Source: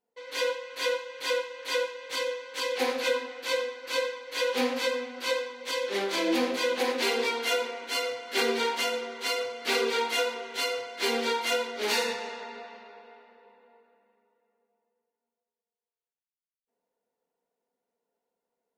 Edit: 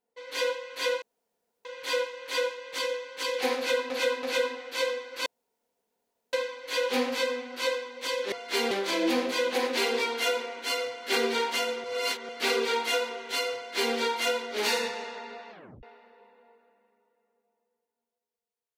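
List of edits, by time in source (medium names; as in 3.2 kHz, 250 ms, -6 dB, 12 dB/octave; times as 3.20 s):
1.02 s: insert room tone 0.63 s
2.94–3.27 s: loop, 3 plays
3.97 s: insert room tone 1.07 s
9.09–9.54 s: reverse
10.81–11.20 s: copy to 5.96 s
12.76 s: tape stop 0.32 s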